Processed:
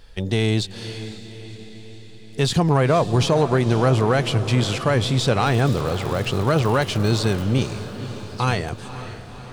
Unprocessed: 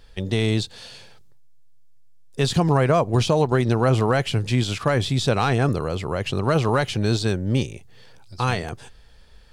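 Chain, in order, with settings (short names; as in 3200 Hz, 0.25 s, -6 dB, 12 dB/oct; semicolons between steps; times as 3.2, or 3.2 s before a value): in parallel at -5.5 dB: soft clip -22 dBFS, distortion -9 dB; 5.45–7.42 on the sum: crackle 230/s -26 dBFS; diffused feedback echo 0.525 s, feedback 60%, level -12.5 dB; gain -1 dB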